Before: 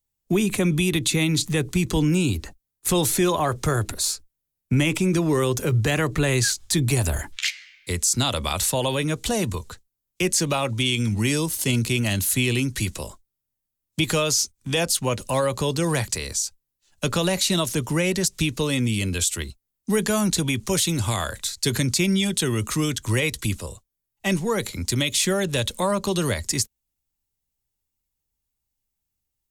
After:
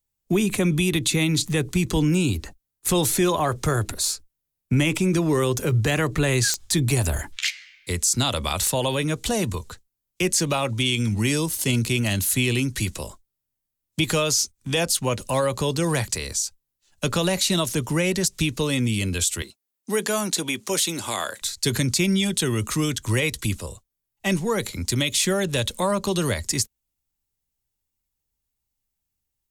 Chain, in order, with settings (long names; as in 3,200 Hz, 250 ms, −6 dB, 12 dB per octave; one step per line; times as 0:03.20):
0:19.42–0:21.42: high-pass filter 290 Hz 12 dB per octave
digital clicks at 0:06.54/0:08.67, −7 dBFS